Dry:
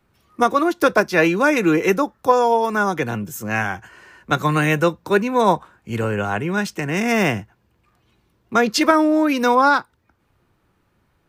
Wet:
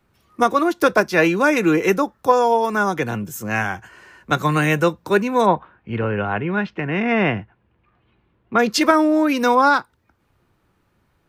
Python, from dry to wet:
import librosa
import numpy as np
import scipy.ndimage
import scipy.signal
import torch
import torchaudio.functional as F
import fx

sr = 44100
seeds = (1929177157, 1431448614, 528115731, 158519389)

y = fx.lowpass(x, sr, hz=3100.0, slope=24, at=(5.45, 8.58), fade=0.02)